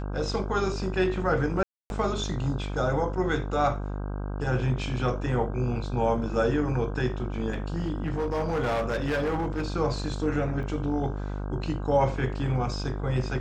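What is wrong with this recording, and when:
mains buzz 50 Hz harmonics 32 −32 dBFS
0:01.63–0:01.90: drop-out 271 ms
0:07.52–0:09.65: clipping −23.5 dBFS
0:10.63: drop-out 3.3 ms

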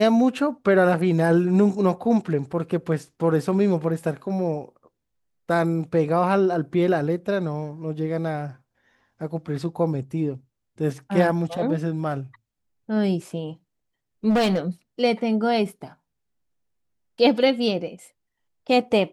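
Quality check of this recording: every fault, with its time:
0:14.29–0:14.58: clipping −17 dBFS

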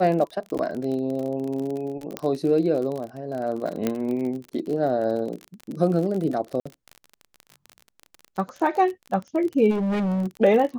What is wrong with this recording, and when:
surface crackle 39 per second −29 dBFS
0:00.58–0:00.59: drop-out 9.1 ms
0:02.17: click −13 dBFS
0:03.87: click −10 dBFS
0:06.60–0:06.66: drop-out 55 ms
0:09.70–0:10.27: clipping −22 dBFS

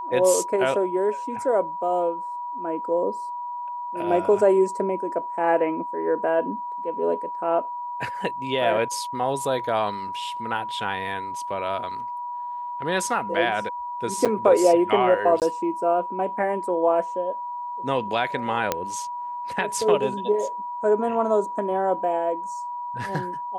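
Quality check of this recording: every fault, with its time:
whistle 970 Hz −29 dBFS
0:14.25–0:14.26: drop-out 6.8 ms
0:15.40–0:15.42: drop-out 18 ms
0:18.72: click −7 dBFS

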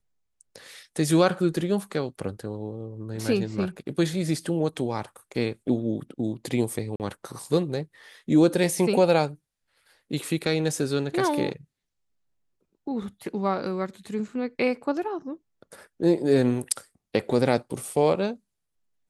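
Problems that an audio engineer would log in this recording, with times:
0:06.96–0:07.00: drop-out 38 ms

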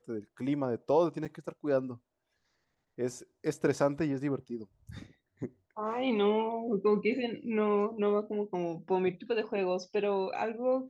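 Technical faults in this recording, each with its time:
0:01.25: drop-out 4.9 ms

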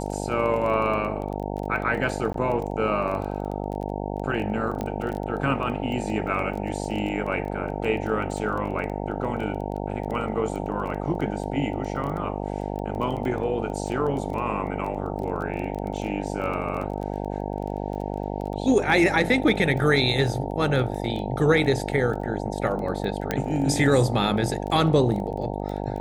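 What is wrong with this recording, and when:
mains buzz 50 Hz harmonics 18 −30 dBFS
surface crackle 15 per second −31 dBFS
0:02.33–0:02.34: drop-out 13 ms
0:04.81: click −17 dBFS
0:23.31: click −10 dBFS

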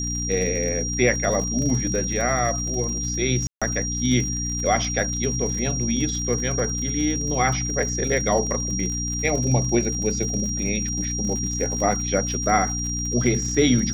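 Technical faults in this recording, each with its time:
surface crackle 67 per second −29 dBFS
mains hum 60 Hz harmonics 5 −29 dBFS
whistle 5,700 Hz −27 dBFS
0:03.47–0:03.62: drop-out 146 ms

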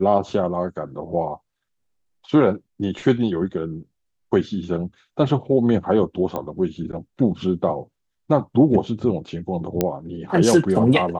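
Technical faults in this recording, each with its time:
0:06.36: click −15 dBFS
0:09.81: click −5 dBFS

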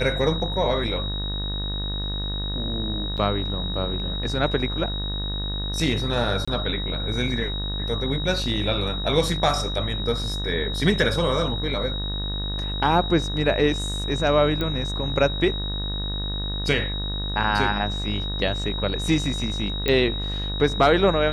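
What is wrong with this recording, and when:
mains buzz 50 Hz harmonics 38 −29 dBFS
whistle 3,800 Hz −30 dBFS
0:03.17–0:03.18: drop-out 7.4 ms
0:06.45–0:06.47: drop-out 25 ms
0:14.61: click −14 dBFS
0:19.88: click −9 dBFS

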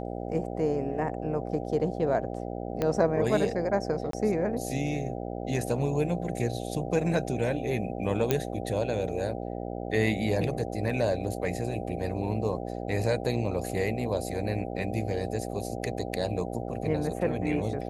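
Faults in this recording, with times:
mains buzz 60 Hz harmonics 13 −35 dBFS
0:02.82: click −15 dBFS
0:04.11–0:04.13: drop-out 23 ms
0:08.31: click −10 dBFS

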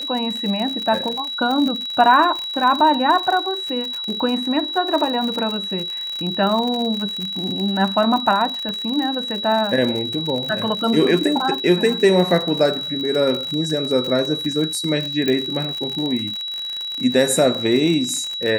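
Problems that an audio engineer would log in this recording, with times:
surface crackle 63 per second −23 dBFS
whistle 3,900 Hz −25 dBFS
0:08.69: click −16 dBFS
0:15.28: click −8 dBFS

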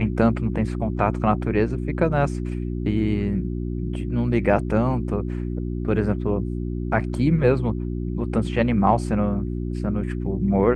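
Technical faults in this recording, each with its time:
mains hum 60 Hz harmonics 6 −27 dBFS

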